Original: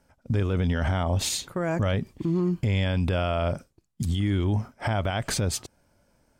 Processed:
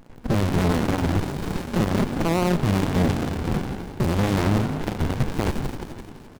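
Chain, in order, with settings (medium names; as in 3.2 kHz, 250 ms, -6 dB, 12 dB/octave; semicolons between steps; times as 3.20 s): low-pass 12 kHz 12 dB/octave; gate with hold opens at -51 dBFS; high-pass 170 Hz 12 dB/octave; peaking EQ 6 kHz -9 dB 0.74 oct; in parallel at -5 dB: fuzz box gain 41 dB, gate -45 dBFS; on the sum: power-law waveshaper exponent 0.35; on a send: frequency-shifting echo 171 ms, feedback 59%, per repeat +47 Hz, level -9 dB; on the sum: sliding maximum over 65 samples; trim -5.5 dB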